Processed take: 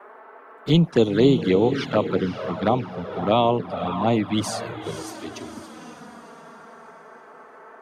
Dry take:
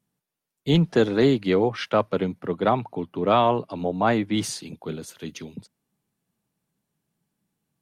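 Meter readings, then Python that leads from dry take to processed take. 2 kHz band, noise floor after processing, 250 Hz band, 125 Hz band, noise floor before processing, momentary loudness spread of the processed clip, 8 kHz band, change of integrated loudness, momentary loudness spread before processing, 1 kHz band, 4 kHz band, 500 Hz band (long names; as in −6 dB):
−1.5 dB, −47 dBFS, +2.0 dB, +3.0 dB, −84 dBFS, 19 LU, 0.0 dB, +1.0 dB, 15 LU, −0.5 dB, +1.5 dB, +1.0 dB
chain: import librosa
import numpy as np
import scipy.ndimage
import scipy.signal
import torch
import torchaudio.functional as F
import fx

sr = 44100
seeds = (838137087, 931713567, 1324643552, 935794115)

y = fx.echo_diffused(x, sr, ms=526, feedback_pct=43, wet_db=-9.0)
y = fx.dmg_noise_band(y, sr, seeds[0], low_hz=310.0, high_hz=1500.0, level_db=-45.0)
y = fx.env_flanger(y, sr, rest_ms=5.3, full_db=-16.0)
y = F.gain(torch.from_numpy(y), 2.5).numpy()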